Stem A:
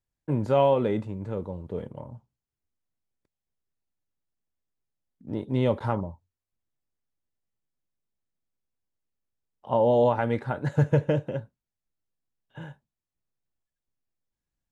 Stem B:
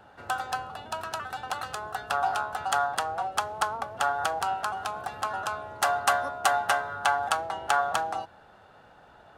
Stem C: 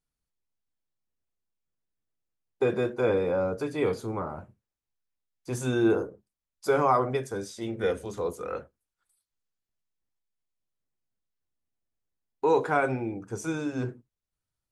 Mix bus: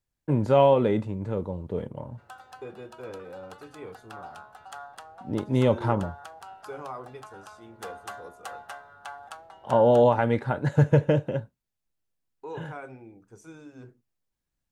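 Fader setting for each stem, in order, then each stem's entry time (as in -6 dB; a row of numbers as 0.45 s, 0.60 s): +2.5 dB, -16.0 dB, -15.5 dB; 0.00 s, 2.00 s, 0.00 s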